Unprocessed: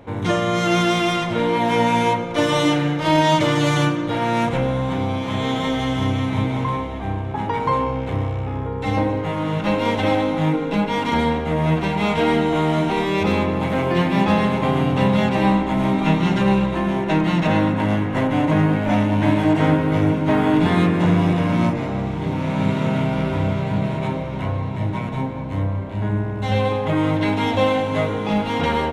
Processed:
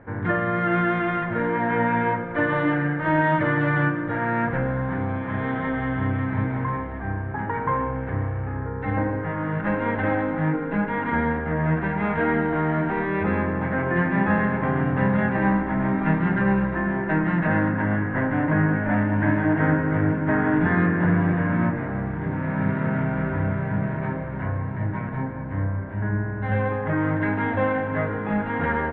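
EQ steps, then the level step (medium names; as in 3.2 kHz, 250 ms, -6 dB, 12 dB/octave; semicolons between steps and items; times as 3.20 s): four-pole ladder low-pass 1.8 kHz, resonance 75%; bass shelf 420 Hz +6 dB; +3.5 dB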